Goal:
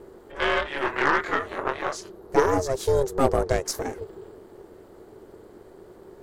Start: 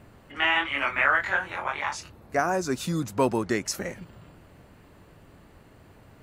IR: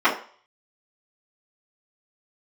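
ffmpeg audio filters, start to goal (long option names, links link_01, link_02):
-af "aeval=exprs='val(0)*sin(2*PI*270*n/s)':channel_layout=same,equalizer=frequency=160:width_type=o:width=0.67:gain=-7,equalizer=frequency=400:width_type=o:width=0.67:gain=11,equalizer=frequency=2500:width_type=o:width=0.67:gain=-10,aeval=exprs='0.376*(cos(1*acos(clip(val(0)/0.376,-1,1)))-cos(1*PI/2))+0.0211*(cos(8*acos(clip(val(0)/0.376,-1,1)))-cos(8*PI/2))':channel_layout=same,volume=4dB"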